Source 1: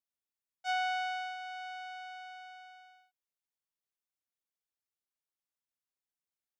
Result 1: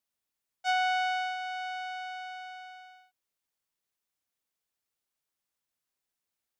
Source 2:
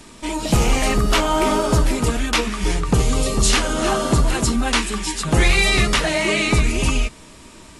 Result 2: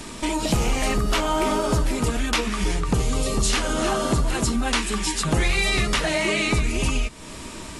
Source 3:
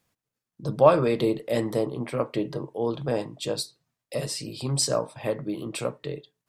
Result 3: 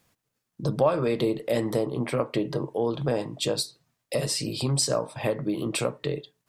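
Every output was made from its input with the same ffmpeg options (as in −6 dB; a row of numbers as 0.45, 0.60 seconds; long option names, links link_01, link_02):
-af "acompressor=threshold=-31dB:ratio=2.5,volume=6.5dB"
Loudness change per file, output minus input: +5.5, −4.0, −0.5 LU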